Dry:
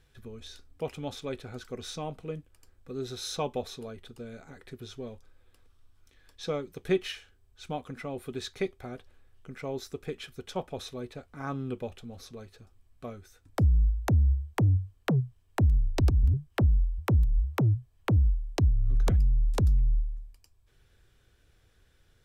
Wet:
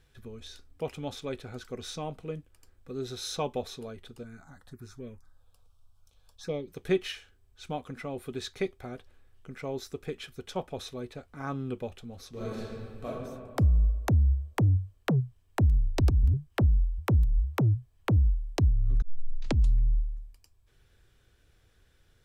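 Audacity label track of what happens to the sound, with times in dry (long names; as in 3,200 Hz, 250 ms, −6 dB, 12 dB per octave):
4.230000	6.680000	phaser swept by the level lowest notch 290 Hz, up to 1,400 Hz, full sweep at −31.5 dBFS
12.300000	13.050000	thrown reverb, RT60 2.1 s, DRR −11 dB
19.020000	19.020000	tape start 0.84 s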